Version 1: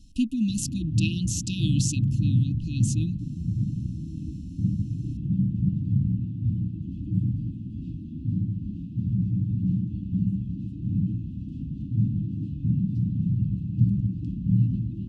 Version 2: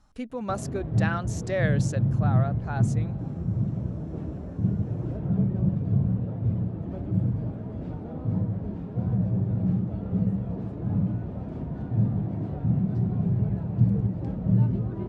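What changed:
speech -11.0 dB; master: remove brick-wall FIR band-stop 330–2500 Hz

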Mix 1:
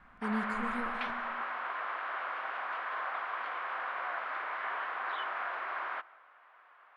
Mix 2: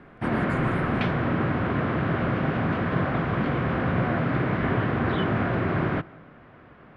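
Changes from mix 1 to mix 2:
background: remove ladder high-pass 780 Hz, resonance 35%; master: add high shelf 9800 Hz +9.5 dB

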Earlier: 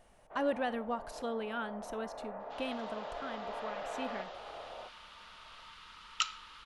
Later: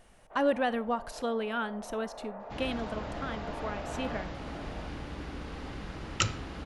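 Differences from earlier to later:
speech +5.5 dB; second sound: remove rippled Chebyshev high-pass 880 Hz, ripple 9 dB

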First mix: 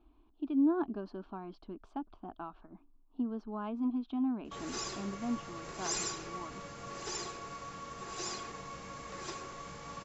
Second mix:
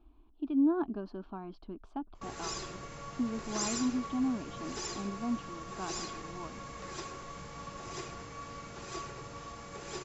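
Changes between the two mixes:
background: entry -2.30 s; master: add low shelf 140 Hz +5.5 dB

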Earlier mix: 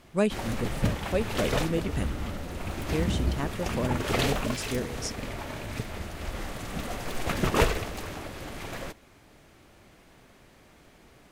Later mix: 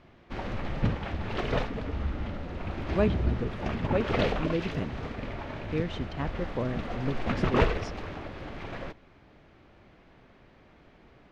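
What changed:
speech: entry +2.80 s; master: add air absorption 240 m

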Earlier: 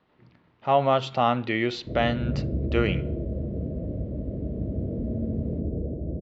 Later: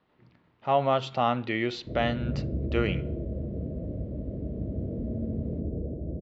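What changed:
speech -3.0 dB; background -3.0 dB

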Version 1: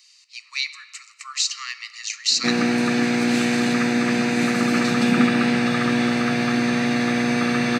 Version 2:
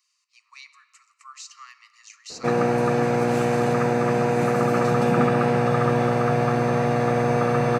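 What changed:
speech -8.5 dB; master: add ten-band EQ 125 Hz +10 dB, 250 Hz -11 dB, 500 Hz +9 dB, 1000 Hz +6 dB, 2000 Hz -7 dB, 4000 Hz -12 dB, 8000 Hz -5 dB

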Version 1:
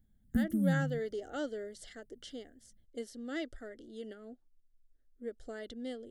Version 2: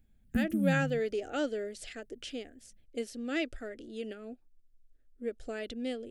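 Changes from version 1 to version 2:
speech +5.0 dB; master: remove Butterworth band-stop 2500 Hz, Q 3.3

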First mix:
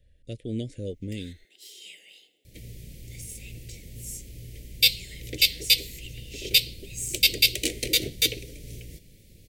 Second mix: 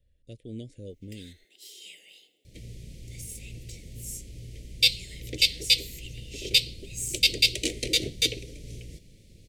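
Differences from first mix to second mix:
speech -7.5 dB; second sound: add LPF 8200 Hz 12 dB/oct; master: add bell 1500 Hz -4.5 dB 1.2 oct

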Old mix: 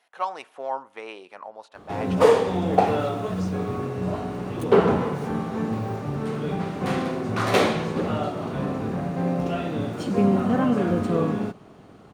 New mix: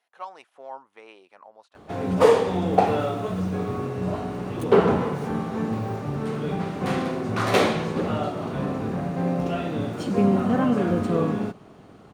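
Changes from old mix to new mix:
speech -8.5 dB; reverb: off

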